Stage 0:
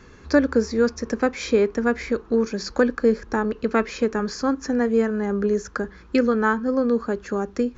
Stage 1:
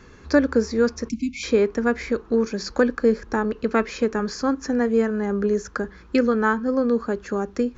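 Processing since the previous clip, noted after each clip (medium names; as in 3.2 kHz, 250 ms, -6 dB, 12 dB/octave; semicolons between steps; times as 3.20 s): spectral selection erased 1.09–1.43 s, 320–2100 Hz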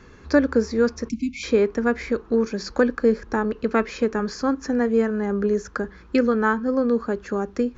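treble shelf 6 kHz -5 dB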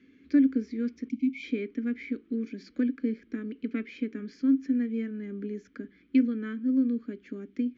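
vowel filter i; trim +1.5 dB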